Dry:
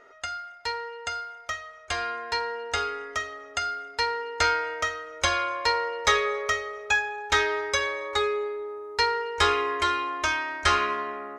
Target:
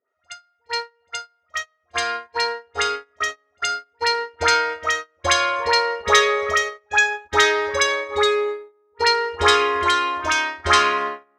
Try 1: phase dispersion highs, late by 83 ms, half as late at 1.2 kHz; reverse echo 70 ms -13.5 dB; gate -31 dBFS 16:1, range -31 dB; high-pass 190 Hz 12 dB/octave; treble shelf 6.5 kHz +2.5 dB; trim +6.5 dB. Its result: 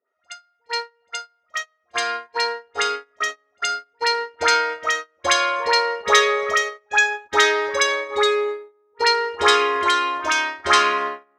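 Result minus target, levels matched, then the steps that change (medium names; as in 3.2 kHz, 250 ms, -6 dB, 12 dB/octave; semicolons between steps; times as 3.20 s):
125 Hz band -12.0 dB
change: high-pass 70 Hz 12 dB/octave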